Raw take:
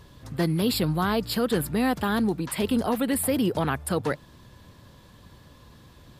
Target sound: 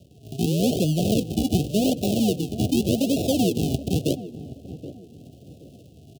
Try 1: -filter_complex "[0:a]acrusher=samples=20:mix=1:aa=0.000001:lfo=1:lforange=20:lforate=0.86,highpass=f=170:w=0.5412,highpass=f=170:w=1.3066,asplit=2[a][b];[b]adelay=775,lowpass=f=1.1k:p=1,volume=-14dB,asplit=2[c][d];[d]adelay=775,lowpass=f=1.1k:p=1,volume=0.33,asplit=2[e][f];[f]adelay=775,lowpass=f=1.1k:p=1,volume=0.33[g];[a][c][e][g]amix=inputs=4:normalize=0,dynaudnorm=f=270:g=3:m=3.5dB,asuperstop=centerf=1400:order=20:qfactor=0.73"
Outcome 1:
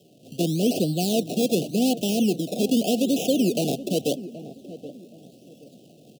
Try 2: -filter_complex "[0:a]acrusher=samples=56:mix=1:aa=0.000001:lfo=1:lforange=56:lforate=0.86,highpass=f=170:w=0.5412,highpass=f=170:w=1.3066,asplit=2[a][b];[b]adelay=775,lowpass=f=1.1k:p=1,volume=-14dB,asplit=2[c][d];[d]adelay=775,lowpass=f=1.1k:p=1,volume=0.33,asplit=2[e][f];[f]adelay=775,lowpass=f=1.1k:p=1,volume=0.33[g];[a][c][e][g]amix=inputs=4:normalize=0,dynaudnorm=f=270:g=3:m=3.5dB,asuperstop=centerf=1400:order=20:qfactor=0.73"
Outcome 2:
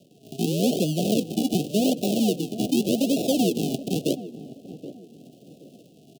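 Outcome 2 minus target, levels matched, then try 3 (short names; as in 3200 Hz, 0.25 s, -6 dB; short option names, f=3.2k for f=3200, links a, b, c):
125 Hz band -4.5 dB
-filter_complex "[0:a]acrusher=samples=56:mix=1:aa=0.000001:lfo=1:lforange=56:lforate=0.86,highpass=f=77:w=0.5412,highpass=f=77:w=1.3066,asplit=2[a][b];[b]adelay=775,lowpass=f=1.1k:p=1,volume=-14dB,asplit=2[c][d];[d]adelay=775,lowpass=f=1.1k:p=1,volume=0.33,asplit=2[e][f];[f]adelay=775,lowpass=f=1.1k:p=1,volume=0.33[g];[a][c][e][g]amix=inputs=4:normalize=0,dynaudnorm=f=270:g=3:m=3.5dB,asuperstop=centerf=1400:order=20:qfactor=0.73"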